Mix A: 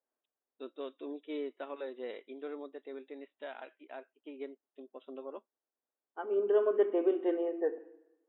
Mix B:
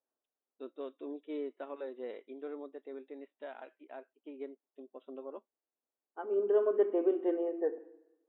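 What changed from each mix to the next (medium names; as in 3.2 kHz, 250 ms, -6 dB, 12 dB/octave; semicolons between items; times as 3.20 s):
master: add treble shelf 2 kHz -10 dB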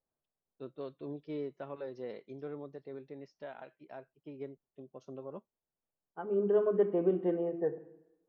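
first voice: add distance through air 58 m; master: remove brick-wall FIR band-pass 230–3900 Hz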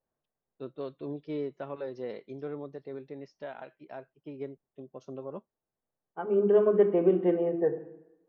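first voice +4.5 dB; second voice: send +8.0 dB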